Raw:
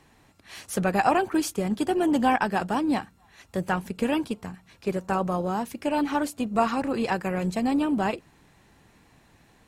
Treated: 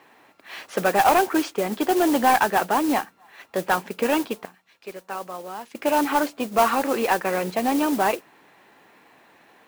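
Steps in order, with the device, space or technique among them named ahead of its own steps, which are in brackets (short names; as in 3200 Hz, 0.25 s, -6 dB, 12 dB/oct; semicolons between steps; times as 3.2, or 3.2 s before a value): 4.45–5.75 pre-emphasis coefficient 0.8; carbon microphone (BPF 390–3000 Hz; soft clip -18 dBFS, distortion -15 dB; modulation noise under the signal 15 dB); gain +8 dB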